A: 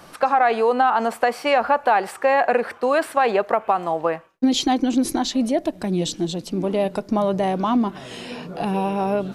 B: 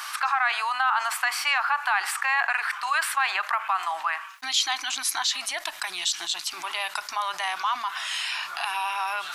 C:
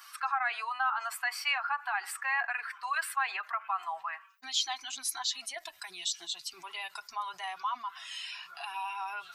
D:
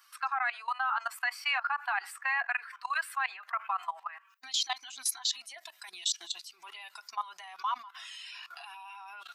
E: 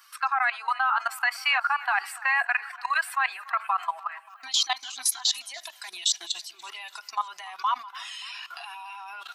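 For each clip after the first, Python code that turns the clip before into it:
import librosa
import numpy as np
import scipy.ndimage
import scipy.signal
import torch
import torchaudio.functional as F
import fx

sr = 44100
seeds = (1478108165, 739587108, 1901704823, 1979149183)

y1 = scipy.signal.sosfilt(scipy.signal.cheby2(4, 40, 540.0, 'highpass', fs=sr, output='sos'), x)
y1 = fx.env_flatten(y1, sr, amount_pct=50)
y2 = fx.bin_expand(y1, sr, power=1.5)
y2 = fx.notch_comb(y2, sr, f0_hz=300.0)
y2 = y2 * 10.0 ** (-4.0 / 20.0)
y3 = fx.level_steps(y2, sr, step_db=17)
y3 = fx.highpass(y3, sr, hz=650.0, slope=6)
y3 = y3 * 10.0 ** (5.5 / 20.0)
y4 = fx.peak_eq(y3, sr, hz=210.0, db=-10.0, octaves=0.24)
y4 = fx.echo_feedback(y4, sr, ms=289, feedback_pct=57, wet_db=-20.5)
y4 = y4 * 10.0 ** (6.5 / 20.0)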